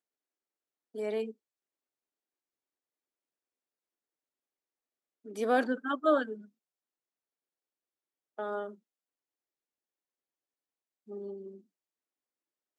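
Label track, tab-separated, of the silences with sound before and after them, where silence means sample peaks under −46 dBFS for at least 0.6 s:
1.320000	5.250000	silence
6.450000	8.390000	silence
8.740000	11.090000	silence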